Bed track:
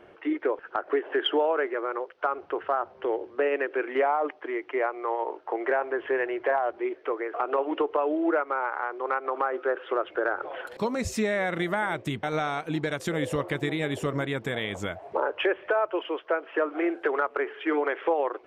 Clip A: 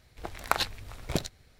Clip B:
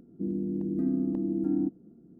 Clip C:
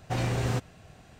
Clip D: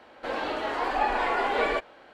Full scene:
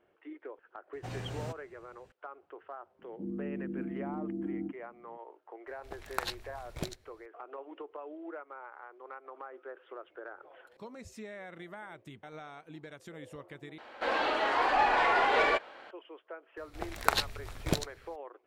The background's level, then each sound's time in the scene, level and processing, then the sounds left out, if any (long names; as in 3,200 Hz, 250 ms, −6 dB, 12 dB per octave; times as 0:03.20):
bed track −18.5 dB
0:00.93: mix in C −12 dB
0:02.99: mix in B −10 dB + double-tracking delay 40 ms −2 dB
0:05.67: mix in A −8 dB
0:13.78: overwrite with D −3.5 dB + mid-hump overdrive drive 12 dB, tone 4,800 Hz, clips at −13 dBFS
0:16.57: mix in A −0.5 dB